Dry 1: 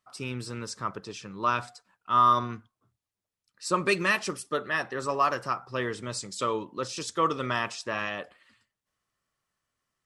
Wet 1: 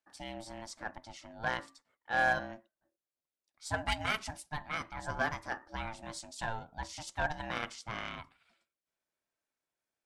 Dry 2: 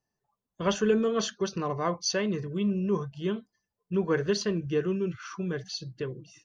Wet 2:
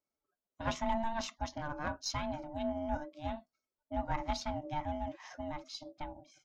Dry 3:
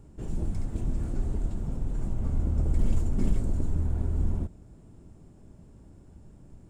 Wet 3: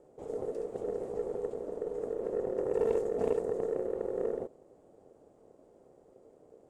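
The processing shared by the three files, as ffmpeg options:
ffmpeg -i in.wav -af "aeval=exprs='val(0)*sin(2*PI*450*n/s)':channel_layout=same,aeval=exprs='0.282*(cos(1*acos(clip(val(0)/0.282,-1,1)))-cos(1*PI/2))+0.0316*(cos(2*acos(clip(val(0)/0.282,-1,1)))-cos(2*PI/2))+0.01*(cos(6*acos(clip(val(0)/0.282,-1,1)))-cos(6*PI/2))+0.00562*(cos(7*acos(clip(val(0)/0.282,-1,1)))-cos(7*PI/2))+0.0126*(cos(8*acos(clip(val(0)/0.282,-1,1)))-cos(8*PI/2))':channel_layout=same,volume=-5dB" out.wav

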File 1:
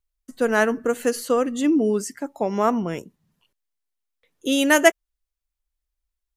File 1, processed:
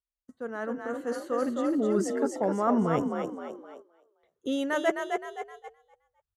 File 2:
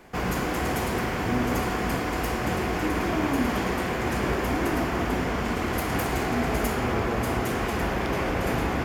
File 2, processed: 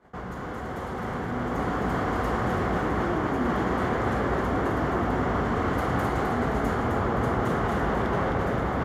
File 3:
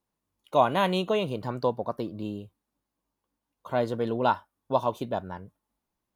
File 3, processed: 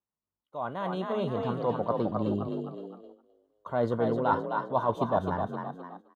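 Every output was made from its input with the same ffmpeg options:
ffmpeg -i in.wav -filter_complex "[0:a]areverse,acompressor=threshold=-29dB:ratio=10,areverse,highpass=40,asplit=6[link_01][link_02][link_03][link_04][link_05][link_06];[link_02]adelay=260,afreqshift=42,volume=-5dB[link_07];[link_03]adelay=520,afreqshift=84,volume=-12.3dB[link_08];[link_04]adelay=780,afreqshift=126,volume=-19.7dB[link_09];[link_05]adelay=1040,afreqshift=168,volume=-27dB[link_10];[link_06]adelay=1300,afreqshift=210,volume=-34.3dB[link_11];[link_01][link_07][link_08][link_09][link_10][link_11]amix=inputs=6:normalize=0,agate=range=-10dB:threshold=-52dB:ratio=16:detection=peak,equalizer=frequency=315:width_type=o:width=0.33:gain=-4,equalizer=frequency=1250:width_type=o:width=0.33:gain=4,equalizer=frequency=2500:width_type=o:width=0.33:gain=-11,equalizer=frequency=5000:width_type=o:width=0.33:gain=-5,dynaudnorm=framelen=320:gausssize=9:maxgain=8.5dB,aemphasis=mode=reproduction:type=75fm,volume=-2.5dB" out.wav

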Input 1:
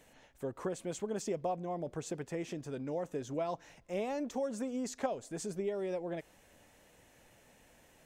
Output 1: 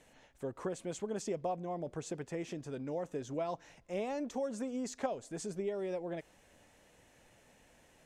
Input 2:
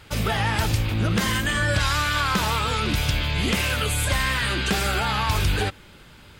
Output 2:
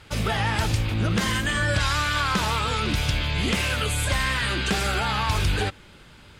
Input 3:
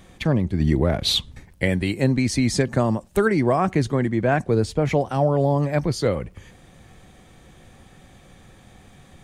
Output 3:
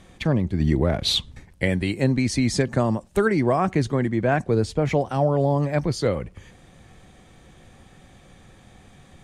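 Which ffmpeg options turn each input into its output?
ffmpeg -i in.wav -af "lowpass=11000,volume=-1dB" out.wav

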